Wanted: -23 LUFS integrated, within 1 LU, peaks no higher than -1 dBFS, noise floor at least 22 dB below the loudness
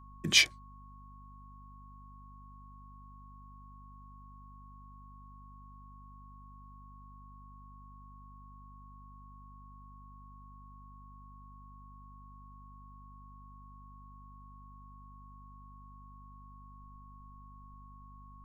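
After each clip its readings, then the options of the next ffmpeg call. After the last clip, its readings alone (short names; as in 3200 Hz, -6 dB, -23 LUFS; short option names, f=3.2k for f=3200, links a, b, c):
hum 50 Hz; harmonics up to 250 Hz; hum level -51 dBFS; steady tone 1100 Hz; tone level -55 dBFS; loudness -25.5 LUFS; peak -9.0 dBFS; loudness target -23.0 LUFS
-> -af "bandreject=f=50:t=h:w=4,bandreject=f=100:t=h:w=4,bandreject=f=150:t=h:w=4,bandreject=f=200:t=h:w=4,bandreject=f=250:t=h:w=4"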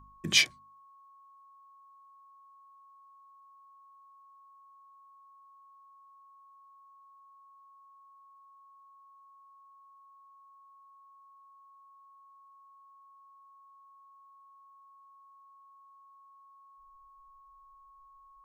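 hum none; steady tone 1100 Hz; tone level -55 dBFS
-> -af "bandreject=f=1.1k:w=30"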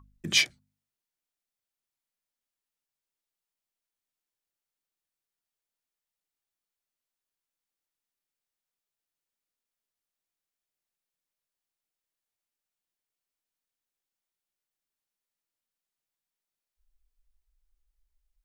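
steady tone none; loudness -25.5 LUFS; peak -9.0 dBFS; loudness target -23.0 LUFS
-> -af "volume=2.5dB"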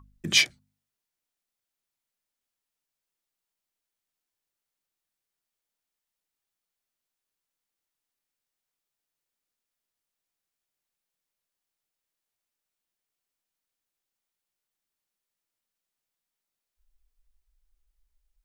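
loudness -23.0 LUFS; peak -6.5 dBFS; noise floor -88 dBFS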